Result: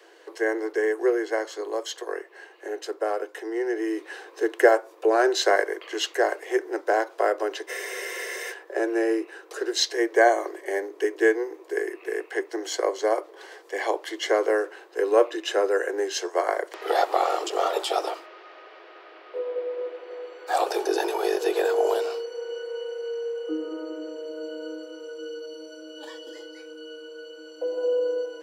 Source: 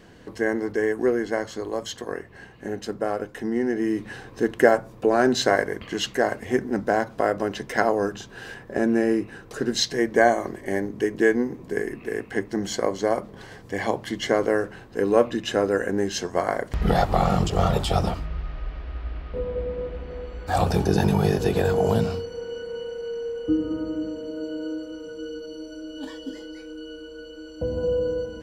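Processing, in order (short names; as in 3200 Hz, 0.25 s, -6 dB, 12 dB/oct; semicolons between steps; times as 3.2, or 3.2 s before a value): steep high-pass 330 Hz 96 dB/oct; spectral freeze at 7.71, 0.80 s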